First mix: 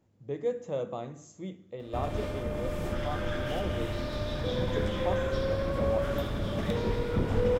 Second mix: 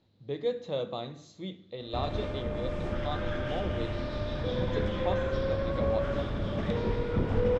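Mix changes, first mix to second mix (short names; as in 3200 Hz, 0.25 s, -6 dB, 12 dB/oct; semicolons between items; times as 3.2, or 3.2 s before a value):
speech: add synth low-pass 4000 Hz, resonance Q 9.2; background: add air absorption 120 m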